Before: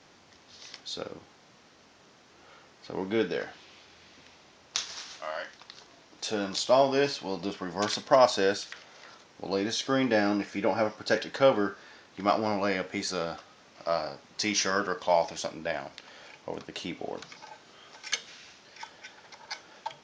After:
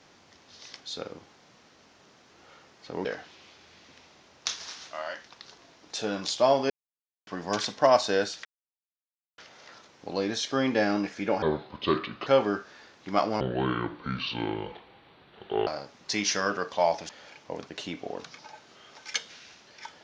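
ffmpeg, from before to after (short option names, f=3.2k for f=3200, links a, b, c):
-filter_complex "[0:a]asplit=10[a][b][c][d][e][f][g][h][i][j];[a]atrim=end=3.052[k];[b]atrim=start=3.338:end=6.99,asetpts=PTS-STARTPTS,afade=t=out:st=3.648:d=0.004:c=hsin[l];[c]atrim=start=6.99:end=7.56,asetpts=PTS-STARTPTS,volume=0[m];[d]atrim=start=7.56:end=8.74,asetpts=PTS-STARTPTS,afade=t=in:d=0.004:c=hsin,afade=t=out:st=1.176:d=0.004:c=hsin,apad=pad_dur=0.93[n];[e]atrim=start=8.74:end=10.784,asetpts=PTS-STARTPTS,afade=t=in:d=0.004:c=hsin[o];[f]atrim=start=10.78:end=11.38,asetpts=PTS-STARTPTS,asetrate=31311,aresample=44100[p];[g]atrim=start=11.376:end=12.524[q];[h]atrim=start=12.52:end=13.97,asetpts=PTS-STARTPTS,asetrate=28224,aresample=44100,atrim=end_sample=99914,asetpts=PTS-STARTPTS[r];[i]atrim=start=13.966:end=15.392[s];[j]atrim=start=16.068[t];[l][m][n][o]concat=n=4:v=0:a=1[u];[k][u]acrossfade=d=0.004:c1=hsin:c2=hsin[v];[v][p]acrossfade=d=0.004:c1=hsin:c2=hsin[w];[w][q]acrossfade=d=0.004:c1=hsin:c2=hsin[x];[x][r]acrossfade=d=0.004:c1=hsin:c2=hsin[y];[y][s]acrossfade=d=0.004:c1=hsin:c2=hsin[z];[z][t]acrossfade=d=0.004:c1=hsin:c2=hsin"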